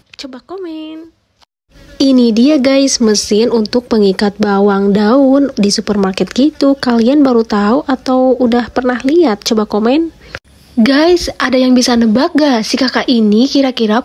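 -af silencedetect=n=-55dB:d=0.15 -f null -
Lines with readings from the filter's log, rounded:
silence_start: 1.45
silence_end: 1.69 | silence_duration: 0.24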